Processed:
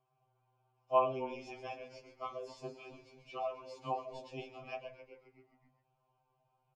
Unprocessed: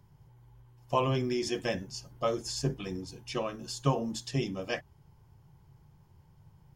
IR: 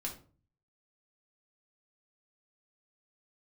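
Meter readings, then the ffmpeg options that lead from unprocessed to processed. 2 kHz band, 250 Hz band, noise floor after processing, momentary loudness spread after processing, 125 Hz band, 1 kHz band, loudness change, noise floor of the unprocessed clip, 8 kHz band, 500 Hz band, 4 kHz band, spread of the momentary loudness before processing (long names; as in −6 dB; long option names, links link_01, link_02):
−10.5 dB, −16.5 dB, −79 dBFS, 21 LU, −20.0 dB, −1.5 dB, −6.5 dB, −62 dBFS, −24.5 dB, −5.0 dB, −16.0 dB, 8 LU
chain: -filter_complex "[0:a]asplit=3[link_01][link_02][link_03];[link_01]bandpass=frequency=730:width_type=q:width=8,volume=0dB[link_04];[link_02]bandpass=frequency=1090:width_type=q:width=8,volume=-6dB[link_05];[link_03]bandpass=frequency=2440:width_type=q:width=8,volume=-9dB[link_06];[link_04][link_05][link_06]amix=inputs=3:normalize=0,asplit=9[link_07][link_08][link_09][link_10][link_11][link_12][link_13][link_14][link_15];[link_08]adelay=132,afreqshift=-68,volume=-9.5dB[link_16];[link_09]adelay=264,afreqshift=-136,volume=-13.8dB[link_17];[link_10]adelay=396,afreqshift=-204,volume=-18.1dB[link_18];[link_11]adelay=528,afreqshift=-272,volume=-22.4dB[link_19];[link_12]adelay=660,afreqshift=-340,volume=-26.7dB[link_20];[link_13]adelay=792,afreqshift=-408,volume=-31dB[link_21];[link_14]adelay=924,afreqshift=-476,volume=-35.3dB[link_22];[link_15]adelay=1056,afreqshift=-544,volume=-39.6dB[link_23];[link_07][link_16][link_17][link_18][link_19][link_20][link_21][link_22][link_23]amix=inputs=9:normalize=0,afftfilt=real='re*2.45*eq(mod(b,6),0)':imag='im*2.45*eq(mod(b,6),0)':win_size=2048:overlap=0.75,volume=5.5dB"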